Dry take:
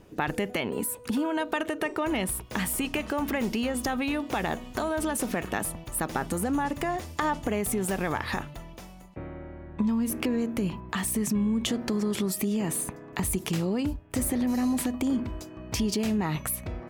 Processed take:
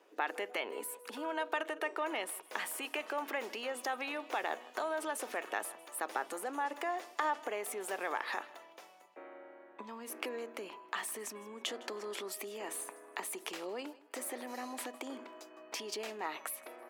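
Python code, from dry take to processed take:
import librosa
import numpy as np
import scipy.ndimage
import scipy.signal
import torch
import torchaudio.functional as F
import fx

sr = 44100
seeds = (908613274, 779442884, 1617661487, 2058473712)

p1 = scipy.signal.sosfilt(scipy.signal.bessel(6, 570.0, 'highpass', norm='mag', fs=sr, output='sos'), x)
p2 = fx.high_shelf(p1, sr, hz=4200.0, db=-8.5)
p3 = p2 + fx.echo_feedback(p2, sr, ms=159, feedback_pct=29, wet_db=-20.5, dry=0)
y = F.gain(torch.from_numpy(p3), -3.5).numpy()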